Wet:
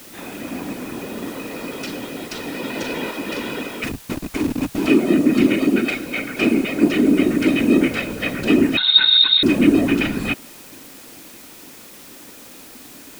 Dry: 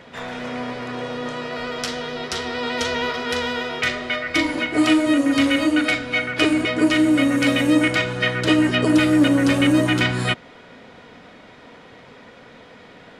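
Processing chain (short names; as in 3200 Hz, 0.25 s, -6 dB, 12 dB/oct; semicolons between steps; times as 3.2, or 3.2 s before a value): 3.84–4.86 Schmitt trigger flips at -18.5 dBFS; whisperiser; small resonant body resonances 270/2500 Hz, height 12 dB, ringing for 25 ms; added noise white -36 dBFS; 8.77–9.43 inverted band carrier 4000 Hz; gain -6.5 dB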